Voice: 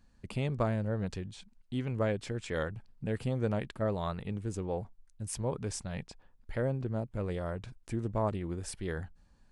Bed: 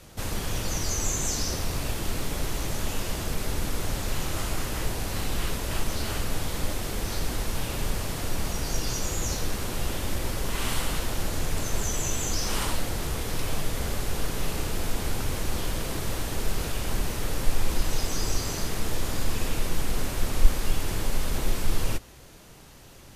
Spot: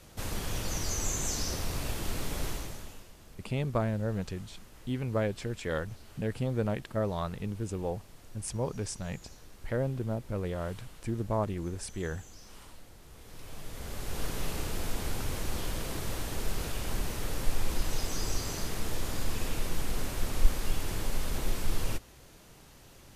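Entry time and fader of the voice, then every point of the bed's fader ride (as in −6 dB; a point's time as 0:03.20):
3.15 s, +1.0 dB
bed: 0:02.49 −4.5 dB
0:03.12 −23.5 dB
0:13.03 −23.5 dB
0:14.24 −5 dB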